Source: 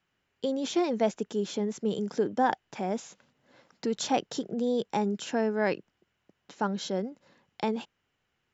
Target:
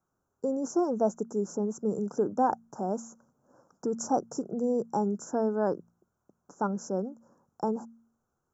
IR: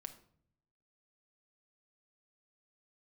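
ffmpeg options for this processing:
-af "asuperstop=centerf=2900:order=12:qfactor=0.67,bandreject=f=57.29:t=h:w=4,bandreject=f=114.58:t=h:w=4,bandreject=f=171.87:t=h:w=4,bandreject=f=229.16:t=h:w=4"

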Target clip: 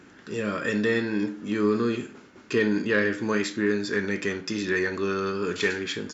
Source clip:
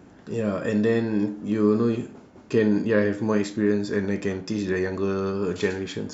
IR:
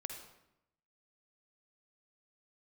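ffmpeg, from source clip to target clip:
-filter_complex "[0:a]firequalizer=gain_entry='entry(360,0);entry(680,-10);entry(1400,2)':delay=0.05:min_phase=1,asplit=2[a][b];[b]highpass=f=720:p=1,volume=13dB,asoftclip=type=tanh:threshold=-6dB[c];[a][c]amix=inputs=2:normalize=0,lowpass=f=5k:p=1,volume=-6dB,volume=-3dB"

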